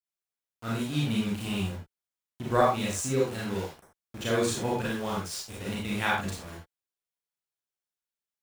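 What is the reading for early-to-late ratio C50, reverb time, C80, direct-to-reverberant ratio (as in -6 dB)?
1.0 dB, not exponential, 6.5 dB, -5.5 dB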